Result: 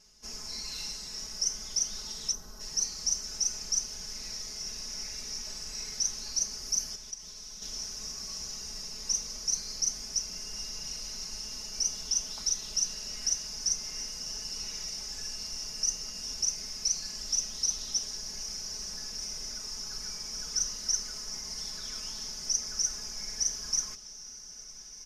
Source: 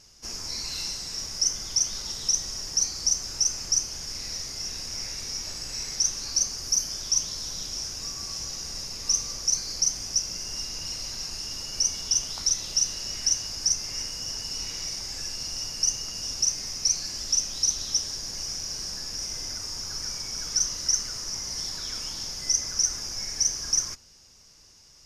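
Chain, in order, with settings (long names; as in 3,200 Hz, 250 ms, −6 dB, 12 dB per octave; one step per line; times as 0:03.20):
0:06.95–0:07.62: output level in coarse steps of 21 dB
comb filter 4.7 ms, depth 97%
feedback delay with all-pass diffusion 1,726 ms, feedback 47%, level −13.5 dB
0:02.33–0:02.61: gain on a spectral selection 1,700–11,000 Hz −12 dB
level −8.5 dB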